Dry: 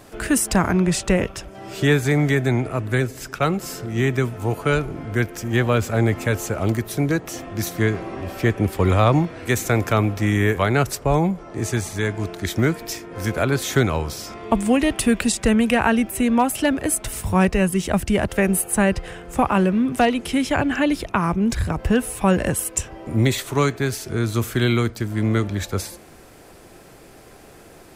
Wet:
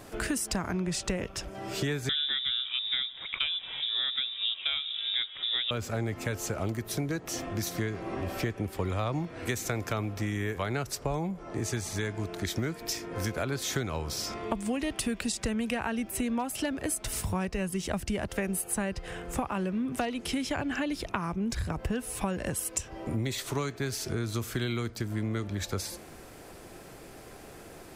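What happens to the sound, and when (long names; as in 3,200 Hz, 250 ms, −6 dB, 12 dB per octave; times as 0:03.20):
0:02.09–0:05.71: voice inversion scrambler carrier 3,700 Hz
whole clip: dynamic equaliser 5,000 Hz, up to +5 dB, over −42 dBFS, Q 1.3; downward compressor 5 to 1, threshold −27 dBFS; level −2 dB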